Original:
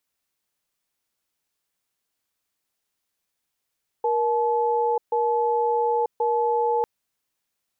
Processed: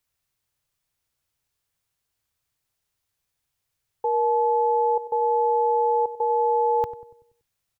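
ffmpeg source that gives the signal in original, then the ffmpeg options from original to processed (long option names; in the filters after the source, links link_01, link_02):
-f lavfi -i "aevalsrc='0.0794*(sin(2*PI*472*t)+sin(2*PI*862*t))*clip(min(mod(t,1.08),0.94-mod(t,1.08))/0.005,0,1)':duration=2.8:sample_rate=44100"
-filter_complex "[0:a]lowshelf=frequency=160:width_type=q:width=1.5:gain=9.5,asplit=2[link_01][link_02];[link_02]adelay=95,lowpass=frequency=820:poles=1,volume=-13dB,asplit=2[link_03][link_04];[link_04]adelay=95,lowpass=frequency=820:poles=1,volume=0.54,asplit=2[link_05][link_06];[link_06]adelay=95,lowpass=frequency=820:poles=1,volume=0.54,asplit=2[link_07][link_08];[link_08]adelay=95,lowpass=frequency=820:poles=1,volume=0.54,asplit=2[link_09][link_10];[link_10]adelay=95,lowpass=frequency=820:poles=1,volume=0.54,asplit=2[link_11][link_12];[link_12]adelay=95,lowpass=frequency=820:poles=1,volume=0.54[link_13];[link_01][link_03][link_05][link_07][link_09][link_11][link_13]amix=inputs=7:normalize=0"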